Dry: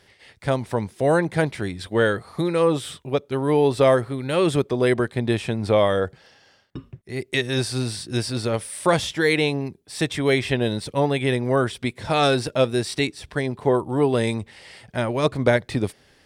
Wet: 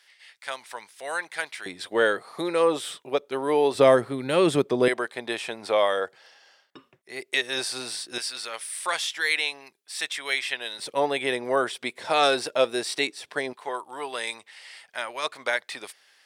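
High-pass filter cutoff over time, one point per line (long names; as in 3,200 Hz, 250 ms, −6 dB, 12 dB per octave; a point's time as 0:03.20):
1,400 Hz
from 0:01.66 420 Hz
from 0:03.75 200 Hz
from 0:04.88 610 Hz
from 0:08.18 1,300 Hz
from 0:10.79 470 Hz
from 0:13.53 1,100 Hz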